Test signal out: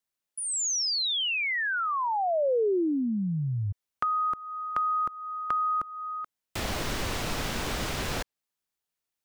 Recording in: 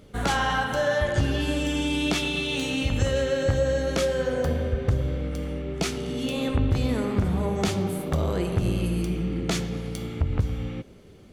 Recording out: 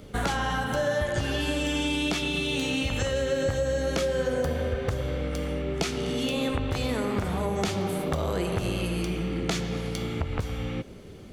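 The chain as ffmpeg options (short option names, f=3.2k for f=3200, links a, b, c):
-filter_complex "[0:a]acrossover=split=460|6800[a][b][c];[a]acompressor=threshold=-34dB:ratio=4[d];[b]acompressor=threshold=-34dB:ratio=4[e];[c]acompressor=threshold=-51dB:ratio=4[f];[d][e][f]amix=inputs=3:normalize=0,volume=5dB"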